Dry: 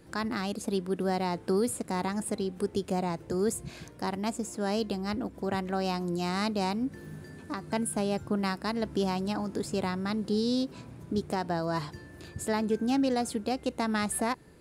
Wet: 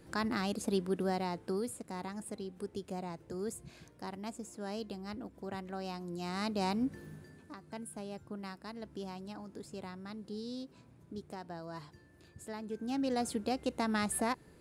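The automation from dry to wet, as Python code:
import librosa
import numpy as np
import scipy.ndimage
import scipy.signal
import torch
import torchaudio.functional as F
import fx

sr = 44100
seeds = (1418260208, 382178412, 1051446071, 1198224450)

y = fx.gain(x, sr, db=fx.line((0.84, -2.0), (1.77, -10.5), (6.07, -10.5), (6.82, -1.5), (7.6, -14.0), (12.62, -14.0), (13.24, -3.5)))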